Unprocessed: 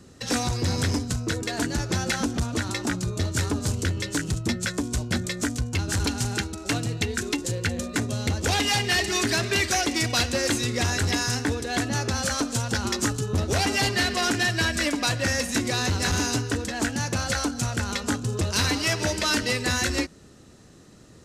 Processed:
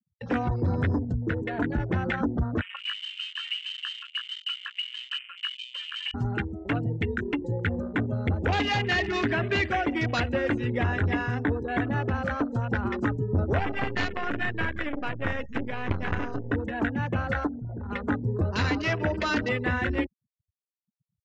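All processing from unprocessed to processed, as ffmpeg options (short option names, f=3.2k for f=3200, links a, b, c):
-filter_complex "[0:a]asettb=1/sr,asplit=3[a][b][c];[a]atrim=end=2.614[d];[b]atrim=start=2.61:end=6.14,asetpts=PTS-STARTPTS,afade=t=in:d=0.004:c=qsin,afade=t=out:st=3.526:d=0.004:c=qsin,highpass=f=430:p=1,tiltshelf=f=700:g=7,lowpass=f=2.7k:t=q:w=0.5098,lowpass=f=2.7k:t=q:w=0.6013,lowpass=f=2.7k:t=q:w=0.9,lowpass=f=2.7k:t=q:w=2.563,afreqshift=-3200[e];[c]atrim=start=6.136[f];[d][e]acrossfade=d=0.004:c1=hsin:c2=qsin[g];[g][f]acrossfade=d=0.004:c1=qsin:c2=hsin,asettb=1/sr,asplit=3[h][i][j];[h]atrim=end=13.594[k];[i]atrim=start=13.59:end=16.51,asetpts=PTS-STARTPTS,afade=t=in:d=0.004:c=qsin,afade=t=out:st=2.916:d=0.004:c=qsin,equalizer=f=640:w=7.1:g=-4.5,bandreject=f=60:t=h:w=6,bandreject=f=120:t=h:w=6,bandreject=f=180:t=h:w=6,bandreject=f=240:t=h:w=6,bandreject=f=300:t=h:w=6,bandreject=f=360:t=h:w=6,bandreject=f=420:t=h:w=6,acrusher=bits=4:dc=4:mix=0:aa=0.000001[l];[j]atrim=start=16.506[m];[k][l]acrossfade=d=0.004:c1=hsin:c2=qsin[n];[n][m]acrossfade=d=0.004:c1=qsin:c2=hsin,asettb=1/sr,asplit=3[o][p][q];[o]atrim=end=17.474[r];[p]atrim=start=17.47:end=17.91,asetpts=PTS-STARTPTS,afade=t=in:d=0.004:c=qsin,afade=t=out:st=0.436:d=0.004:c=qsin,bandreject=f=50:t=h:w=6,bandreject=f=100:t=h:w=6,bandreject=f=150:t=h:w=6,asoftclip=type=hard:threshold=-31.5dB,highshelf=f=3.8k:g=-11.5[s];[q]atrim=start=17.906[t];[r][s]acrossfade=d=0.004:c1=hsin:c2=qsin[u];[u][t]acrossfade=d=0.004:c1=qsin:c2=hsin,afftfilt=real='re*gte(hypot(re,im),0.0316)':imag='im*gte(hypot(re,im),0.0316)':win_size=1024:overlap=0.75,lowpass=2.6k,afwtdn=0.0158"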